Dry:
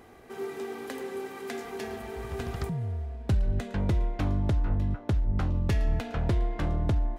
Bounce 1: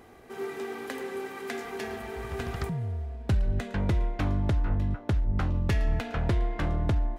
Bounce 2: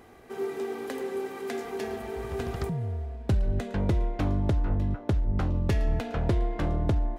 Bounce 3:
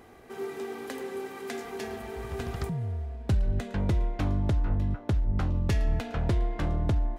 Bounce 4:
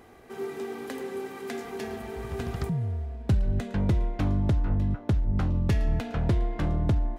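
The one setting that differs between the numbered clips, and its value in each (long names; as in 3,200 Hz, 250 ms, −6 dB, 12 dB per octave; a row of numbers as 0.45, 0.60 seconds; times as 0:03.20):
dynamic equaliser, frequency: 1,800, 440, 6,900, 170 Hertz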